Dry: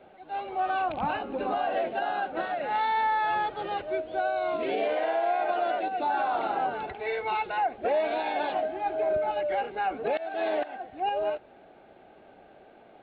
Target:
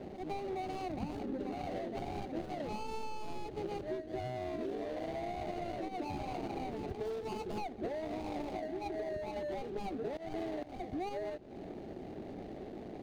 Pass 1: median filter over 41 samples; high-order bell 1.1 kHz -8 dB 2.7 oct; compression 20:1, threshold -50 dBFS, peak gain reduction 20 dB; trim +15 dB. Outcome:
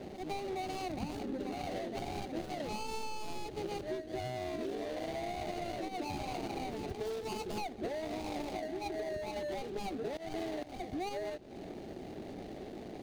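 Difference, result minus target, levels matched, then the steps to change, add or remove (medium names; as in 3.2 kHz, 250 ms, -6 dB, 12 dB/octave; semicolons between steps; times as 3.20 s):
4 kHz band +5.5 dB
add after compression: treble shelf 3 kHz -10.5 dB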